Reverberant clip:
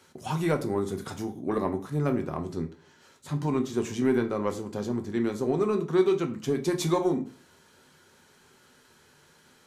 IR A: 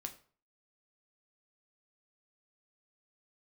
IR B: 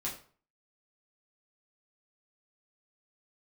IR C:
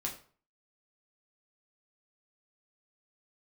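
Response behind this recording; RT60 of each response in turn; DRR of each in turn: A; 0.45 s, 0.45 s, 0.45 s; 5.0 dB, -5.5 dB, -1.5 dB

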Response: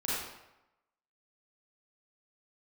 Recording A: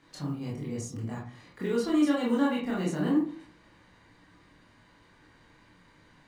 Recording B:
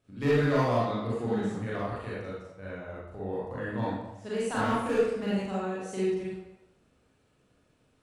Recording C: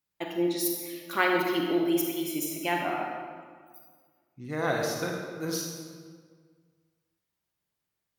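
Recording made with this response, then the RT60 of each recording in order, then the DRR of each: B; 0.45 s, 0.95 s, 1.8 s; -5.0 dB, -8.5 dB, 0.0 dB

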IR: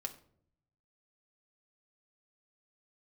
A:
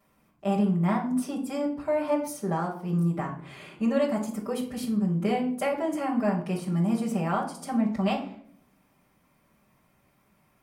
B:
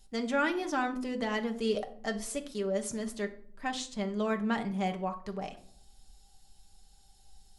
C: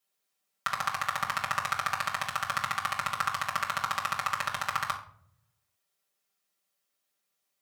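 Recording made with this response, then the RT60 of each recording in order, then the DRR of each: B; 0.60 s, 0.60 s, 0.60 s; -8.5 dB, 4.0 dB, -3.5 dB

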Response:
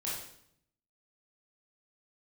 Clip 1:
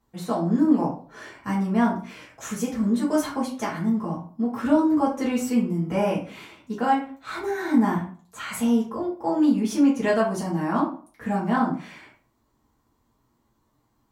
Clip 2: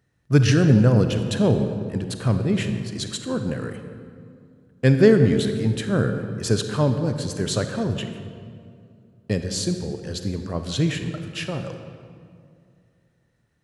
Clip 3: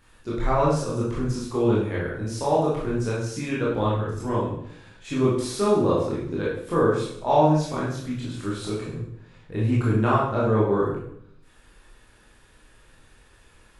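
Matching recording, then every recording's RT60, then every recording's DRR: 3; 0.45 s, 2.4 s, 0.70 s; -7.0 dB, 7.0 dB, -7.0 dB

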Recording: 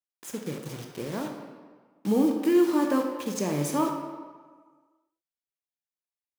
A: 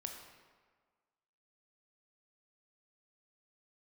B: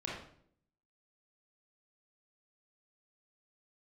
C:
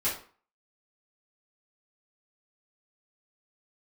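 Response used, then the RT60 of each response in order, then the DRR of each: A; 1.6 s, 0.60 s, 0.45 s; 2.5 dB, -4.5 dB, -11.0 dB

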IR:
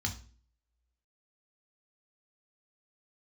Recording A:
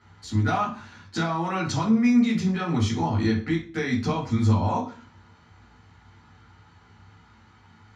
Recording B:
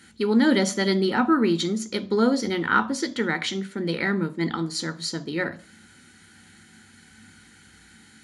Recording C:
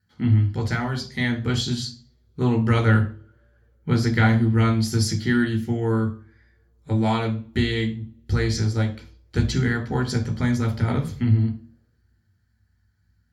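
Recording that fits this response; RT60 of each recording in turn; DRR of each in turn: C; 0.40 s, 0.45 s, 0.45 s; -4.5 dB, 10.5 dB, 3.0 dB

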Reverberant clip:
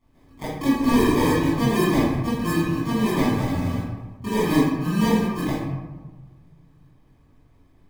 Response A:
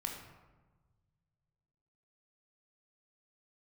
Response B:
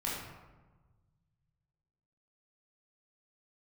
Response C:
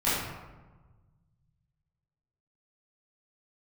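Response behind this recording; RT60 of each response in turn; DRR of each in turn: C; 1.3 s, 1.3 s, 1.3 s; 1.0 dB, -6.5 dB, -12.5 dB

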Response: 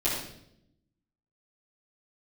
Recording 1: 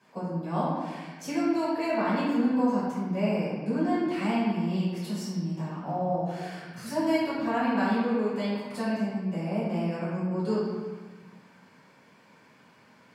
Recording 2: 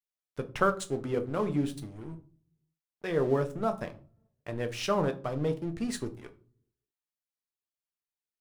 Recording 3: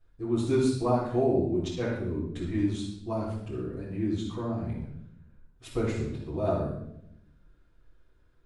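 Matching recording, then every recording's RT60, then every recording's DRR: 3; 1.3 s, 0.40 s, 0.75 s; -11.5 dB, 7.0 dB, -10.5 dB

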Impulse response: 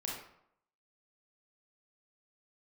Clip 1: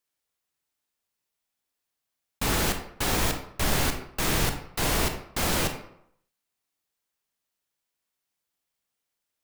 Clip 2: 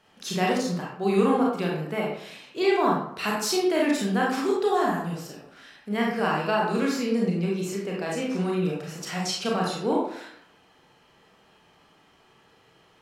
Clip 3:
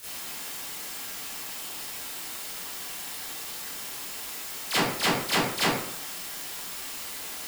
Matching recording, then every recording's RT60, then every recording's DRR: 2; 0.70 s, 0.70 s, 0.70 s; 5.5 dB, -3.5 dB, -13.0 dB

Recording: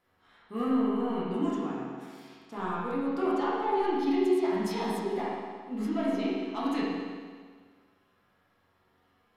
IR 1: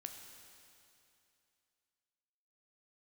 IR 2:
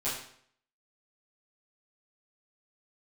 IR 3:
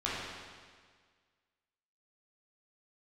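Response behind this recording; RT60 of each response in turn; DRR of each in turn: 3; 2.7 s, 0.60 s, 1.7 s; 4.0 dB, -10.5 dB, -8.5 dB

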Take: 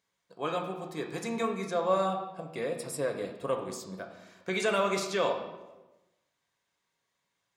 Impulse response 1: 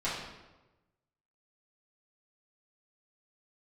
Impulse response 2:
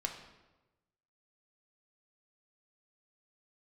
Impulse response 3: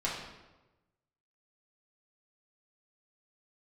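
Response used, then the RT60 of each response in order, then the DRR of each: 2; 1.1 s, 1.1 s, 1.1 s; -11.0 dB, 2.5 dB, -6.5 dB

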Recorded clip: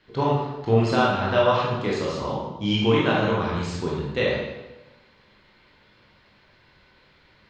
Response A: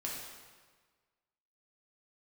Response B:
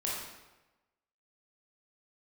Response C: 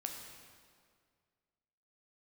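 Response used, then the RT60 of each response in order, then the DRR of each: B; 1.5 s, 1.1 s, 2.0 s; -4.0 dB, -5.5 dB, 2.0 dB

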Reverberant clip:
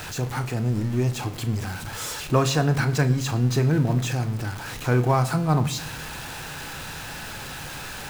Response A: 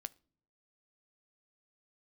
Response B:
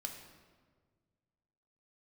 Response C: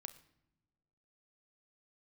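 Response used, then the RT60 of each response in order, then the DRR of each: C; no single decay rate, 1.6 s, no single decay rate; 15.5 dB, 2.0 dB, 9.5 dB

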